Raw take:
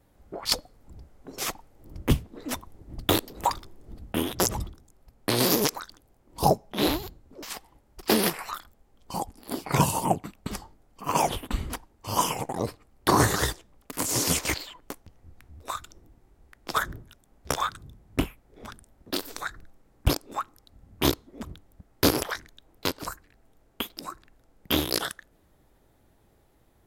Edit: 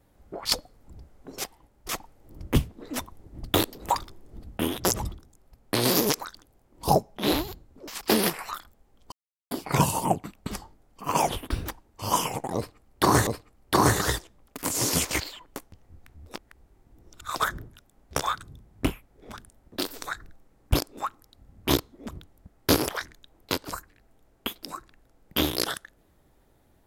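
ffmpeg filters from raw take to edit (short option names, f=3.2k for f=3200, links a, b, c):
-filter_complex "[0:a]asplit=11[a][b][c][d][e][f][g][h][i][j][k];[a]atrim=end=1.442[l];[b]atrim=start=7.558:end=8.012[m];[c]atrim=start=1.438:end=7.562[n];[d]atrim=start=8.008:end=9.12,asetpts=PTS-STARTPTS,afade=t=out:st=1.108:d=0.004:c=hsin[o];[e]atrim=start=9.12:end=9.51,asetpts=PTS-STARTPTS,volume=0[p];[f]atrim=start=9.51:end=11.494,asetpts=PTS-STARTPTS,afade=t=in:d=0.004:c=hsin[q];[g]atrim=start=11.49:end=11.75,asetpts=PTS-STARTPTS,asetrate=55125,aresample=44100[r];[h]atrim=start=11.746:end=13.322[s];[i]atrim=start=12.608:end=15.692[t];[j]atrim=start=15.688:end=16.702,asetpts=PTS-STARTPTS,areverse[u];[k]atrim=start=16.698[v];[l][m]acrossfade=d=0.004:c1=hsin:c2=hsin[w];[w][n]acrossfade=d=0.004:c1=hsin:c2=hsin[x];[o][p][q]concat=n=3:v=0:a=1[y];[x][y]acrossfade=d=0.004:c1=hsin:c2=hsin[z];[z][r]acrossfade=d=0.004:c1=hsin:c2=hsin[aa];[aa][s]acrossfade=d=0.004:c1=hsin:c2=hsin[ab];[ab][t]acrossfade=d=0.004:c1=hsin:c2=hsin[ac];[ac][u]acrossfade=d=0.004:c1=hsin:c2=hsin[ad];[ad][v]acrossfade=d=0.004:c1=hsin:c2=hsin"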